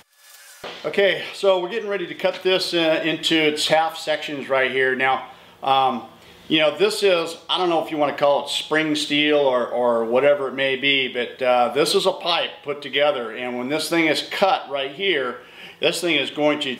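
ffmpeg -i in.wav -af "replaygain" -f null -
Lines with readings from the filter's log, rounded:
track_gain = -0.3 dB
track_peak = 0.478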